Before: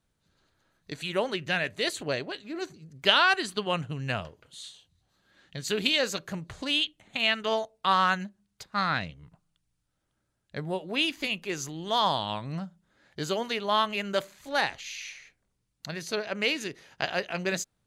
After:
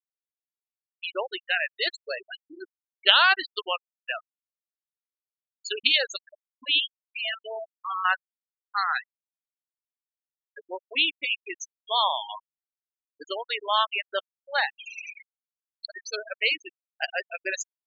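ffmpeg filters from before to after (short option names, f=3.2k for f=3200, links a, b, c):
-filter_complex "[0:a]asettb=1/sr,asplit=3[a][b][c];[a]atrim=end=6.804[d];[b]atrim=start=6.8:end=8.05,asetpts=PTS-STARTPTS,afade=t=in:d=0.004:c=qsin,afade=t=out:st=1.246:d=0.004:c=qsin,volume=28.5dB,asoftclip=hard,volume=-28.5dB[e];[c]atrim=start=8.046[f];[d][e]acrossfade=d=0.004:c1=hsin:c2=qsin[g];[g][f]acrossfade=d=0.004:c1=qsin:c2=hsin,asettb=1/sr,asplit=3[h][i][j];[h]atrim=end=13.454[k];[i]atrim=start=13.45:end=16.29,asetpts=PTS-STARTPTS,afade=t=in:d=0.004:c=qsin,afade=t=out:st=2.836:d=0.004:c=qsin,acompressor=mode=upward:threshold=-27dB:ratio=2.5:attack=3.2:release=140:knee=2.83:detection=peak[l];[j]atrim=start=16.286[m];[k][l]acrossfade=d=0.004:c1=hsin:c2=qsin[n];[n][m]acrossfade=d=0.004:c1=qsin:c2=hsin,highpass=f=1.2k:p=1,afftfilt=real='re*gte(hypot(re,im),0.0562)':imag='im*gte(hypot(re,im),0.0562)':win_size=1024:overlap=0.75,volume=5.5dB"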